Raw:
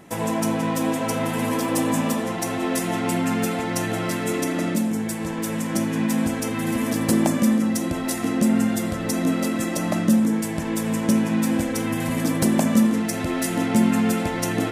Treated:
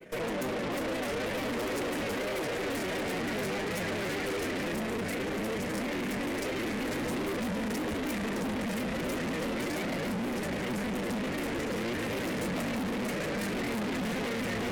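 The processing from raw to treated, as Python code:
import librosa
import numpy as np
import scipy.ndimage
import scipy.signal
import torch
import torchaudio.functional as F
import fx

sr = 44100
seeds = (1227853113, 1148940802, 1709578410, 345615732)

y = fx.peak_eq(x, sr, hz=110.0, db=5.0, octaves=0.77)
y = fx.echo_feedback(y, sr, ms=616, feedback_pct=55, wet_db=-6.0)
y = fx.granulator(y, sr, seeds[0], grain_ms=63.0, per_s=28.0, spray_ms=16.0, spread_st=3)
y = fx.graphic_eq_10(y, sr, hz=(125, 500, 1000, 2000, 8000), db=(-5, 12, -8, 11, -4))
y = fx.tube_stage(y, sr, drive_db=30.0, bias=0.75)
y = y * 10.0 ** (-1.0 / 20.0)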